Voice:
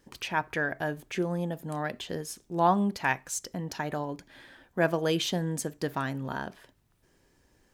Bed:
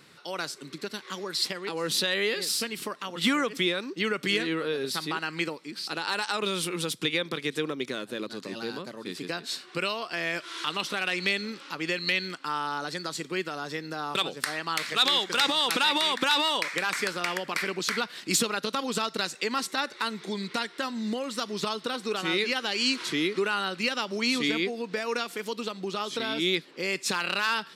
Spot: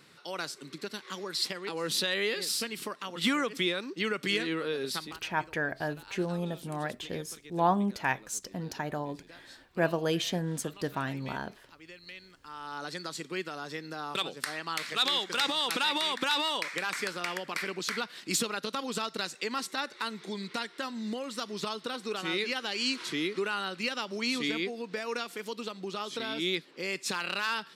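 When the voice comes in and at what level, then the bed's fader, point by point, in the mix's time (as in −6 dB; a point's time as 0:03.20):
5.00 s, −2.0 dB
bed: 0:04.97 −3 dB
0:05.22 −20 dB
0:12.33 −20 dB
0:12.84 −4.5 dB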